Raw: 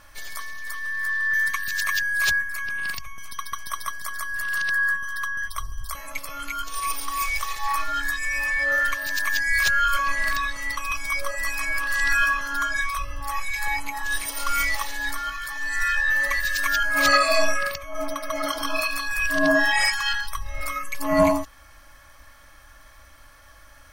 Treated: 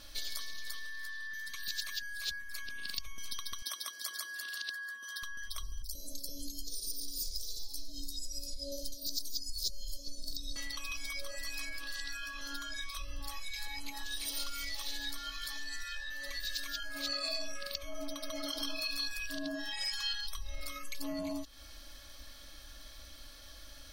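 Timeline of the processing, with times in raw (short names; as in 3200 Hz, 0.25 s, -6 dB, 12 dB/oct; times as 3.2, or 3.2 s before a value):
3.62–5.23 HPF 260 Hz 24 dB/oct
5.82–10.56 Chebyshev band-stop 500–4800 Hz, order 3
whole clip: limiter -16 dBFS; compressor 6:1, threshold -34 dBFS; ten-band EQ 125 Hz -10 dB, 250 Hz +4 dB, 1000 Hz -11 dB, 2000 Hz -8 dB, 4000 Hz +12 dB, 8000 Hz -3 dB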